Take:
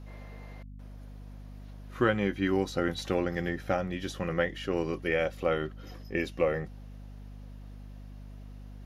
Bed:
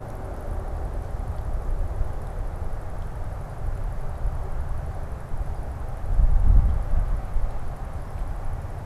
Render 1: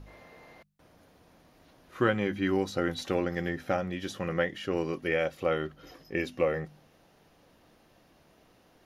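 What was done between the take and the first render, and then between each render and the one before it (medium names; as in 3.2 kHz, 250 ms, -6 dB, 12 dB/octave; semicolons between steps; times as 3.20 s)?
de-hum 50 Hz, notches 5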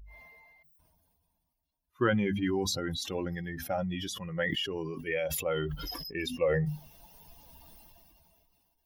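expander on every frequency bin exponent 2; decay stretcher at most 22 dB/s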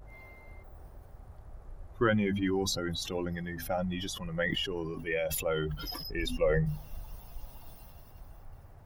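add bed -20 dB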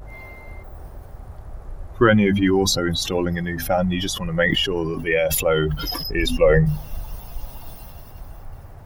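trim +12 dB; peak limiter -2 dBFS, peak gain reduction 1 dB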